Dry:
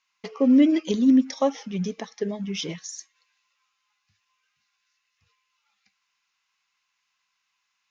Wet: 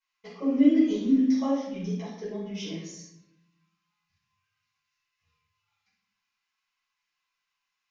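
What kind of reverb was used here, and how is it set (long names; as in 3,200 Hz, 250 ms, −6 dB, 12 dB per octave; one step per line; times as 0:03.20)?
rectangular room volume 230 cubic metres, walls mixed, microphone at 4.9 metres
level −19.5 dB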